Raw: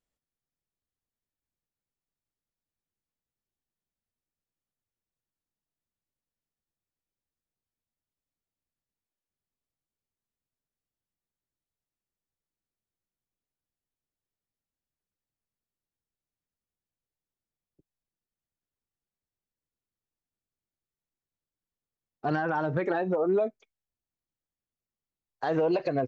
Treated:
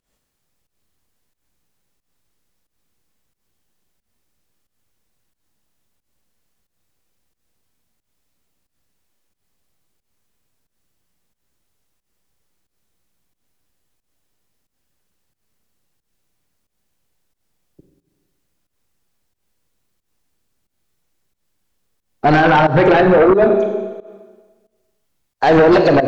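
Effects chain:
four-comb reverb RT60 1.4 s, combs from 31 ms, DRR 4.5 dB
fake sidechain pumping 90 BPM, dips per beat 1, −17 dB, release 170 ms
sine wavefolder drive 7 dB, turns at −14.5 dBFS
level +8 dB

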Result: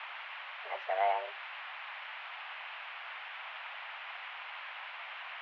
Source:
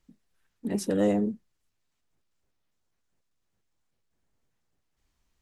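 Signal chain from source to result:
bit-depth reduction 6 bits, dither triangular
single-sideband voice off tune +180 Hz 550–2,700 Hz
level +1.5 dB

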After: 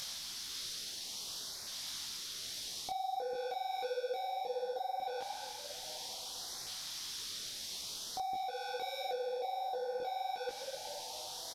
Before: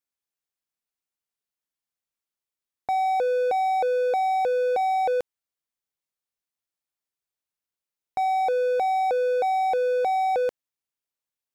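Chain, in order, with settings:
linear delta modulator 64 kbit/s, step −40 dBFS
delay with a band-pass on its return 153 ms, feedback 72%, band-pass 1,000 Hz, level −17 dB
upward compression, threshold −36 dBFS
flat-topped bell 4,400 Hz +11.5 dB 1.1 octaves
tuned comb filter 92 Hz, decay 1.9 s, mix 50%
echo with shifted repeats 256 ms, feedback 52%, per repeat +40 Hz, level −11.5 dB
auto-filter notch saw up 0.6 Hz 320–3,300 Hz
downward compressor 6 to 1, threshold −35 dBFS, peak gain reduction 9.5 dB
soft clipping −26.5 dBFS, distortion −30 dB
micro pitch shift up and down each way 53 cents
level +2.5 dB

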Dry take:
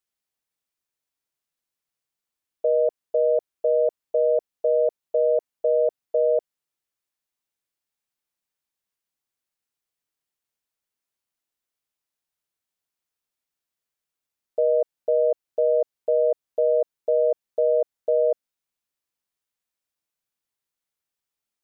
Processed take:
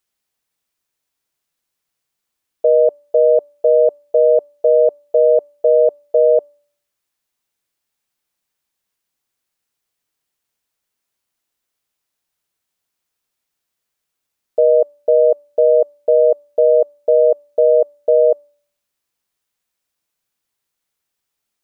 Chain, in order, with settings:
hum removal 290.9 Hz, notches 4
level +8.5 dB

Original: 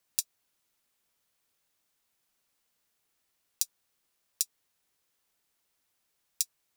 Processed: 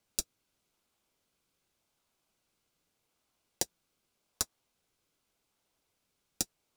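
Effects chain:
high-shelf EQ 11,000 Hz −10 dB
notch filter 1,800 Hz, Q 7
in parallel at −7 dB: sample-and-hold swept by an LFO 31×, swing 100% 0.84 Hz

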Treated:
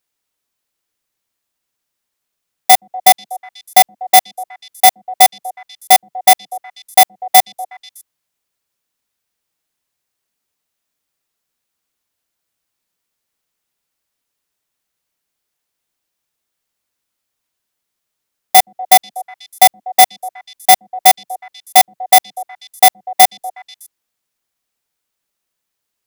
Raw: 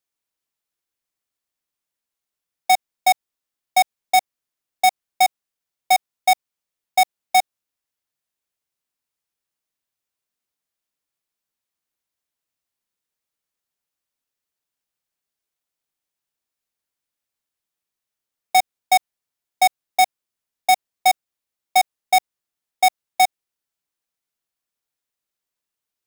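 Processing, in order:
samples in bit-reversed order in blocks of 16 samples
echo through a band-pass that steps 122 ms, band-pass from 200 Hz, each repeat 1.4 octaves, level −11 dB
level +8.5 dB

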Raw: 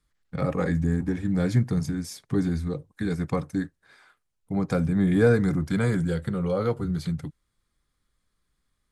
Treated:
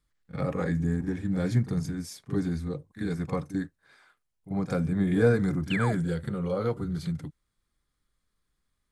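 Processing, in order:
echo ahead of the sound 42 ms −12.5 dB
sound drawn into the spectrogram fall, 0:05.70–0:05.93, 570–3,200 Hz −29 dBFS
level −3.5 dB

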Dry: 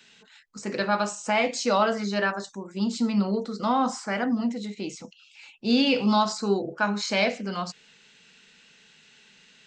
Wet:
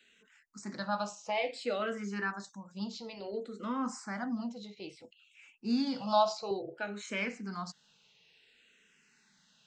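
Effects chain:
0:06.01–0:06.51: graphic EQ with 15 bands 250 Hz −12 dB, 630 Hz +11 dB, 2,500 Hz +7 dB
frequency shifter mixed with the dry sound −0.58 Hz
level −7.5 dB

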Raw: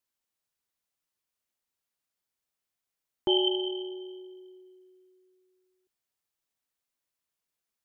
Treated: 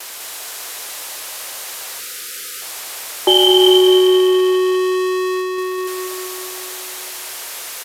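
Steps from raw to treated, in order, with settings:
converter with a step at zero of −40 dBFS
high-pass filter 400 Hz 24 dB per octave
noise gate with hold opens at −42 dBFS
noise that follows the level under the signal 17 dB
repeating echo 200 ms, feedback 57%, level −4 dB
time-frequency box erased 0:02.00–0:02.62, 540–1,200 Hz
downsampling to 32,000 Hz
boost into a limiter +18 dB
feedback echo at a low word length 273 ms, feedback 55%, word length 7 bits, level −14 dB
level −1 dB

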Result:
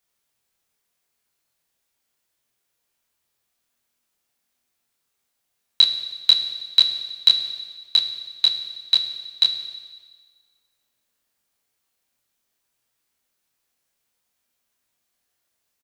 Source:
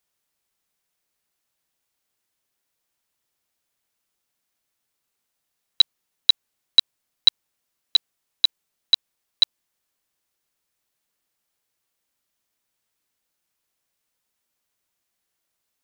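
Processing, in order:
double-tracking delay 25 ms −3 dB
on a send: convolution reverb RT60 1.5 s, pre-delay 4 ms, DRR 7 dB

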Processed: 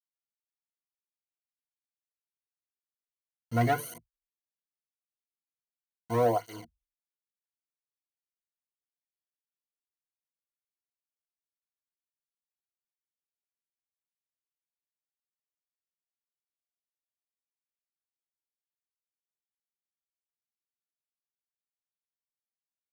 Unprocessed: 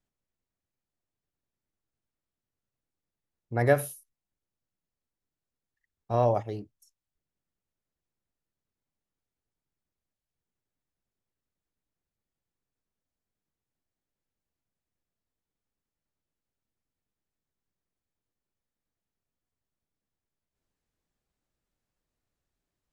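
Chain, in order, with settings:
hold until the input has moved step −39 dBFS
EQ curve with evenly spaced ripples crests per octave 1.9, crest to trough 16 dB
hard clipping −16.5 dBFS, distortion −17 dB
through-zero flanger with one copy inverted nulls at 0.85 Hz, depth 2.7 ms

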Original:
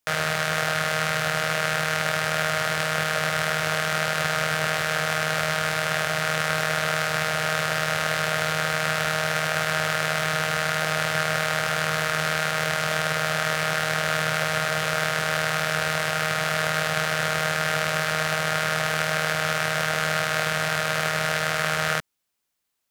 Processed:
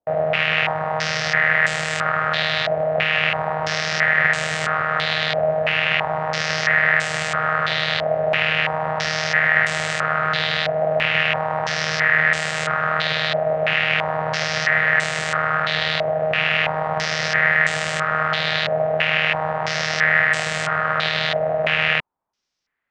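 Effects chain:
formants moved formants +3 semitones
high-frequency loss of the air 95 metres
low-pass on a step sequencer 3 Hz 650–7,900 Hz
level +1.5 dB

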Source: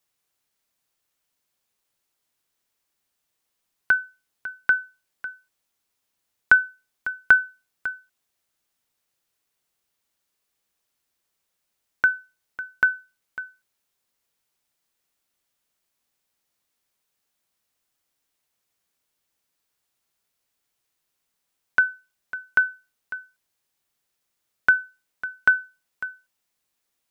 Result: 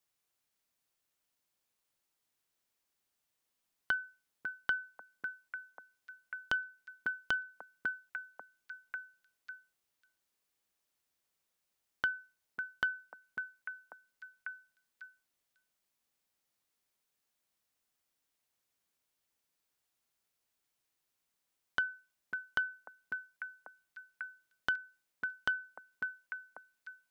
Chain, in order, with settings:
downward compressor 5 to 1, threshold −22 dBFS, peak gain reduction 11 dB
echo through a band-pass that steps 545 ms, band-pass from 260 Hz, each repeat 1.4 octaves, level −6 dB
saturating transformer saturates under 1,400 Hz
level −6 dB

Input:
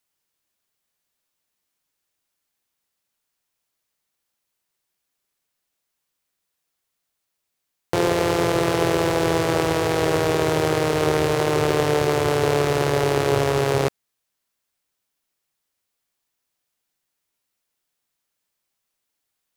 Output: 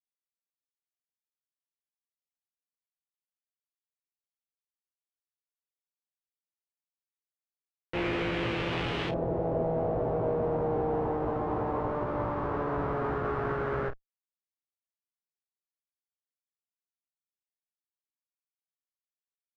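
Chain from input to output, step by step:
comparator with hysteresis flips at −27.5 dBFS
auto-filter low-pass saw up 0.11 Hz 600–3,100 Hz
ambience of single reflections 17 ms −3 dB, 49 ms −12 dB
level −8 dB

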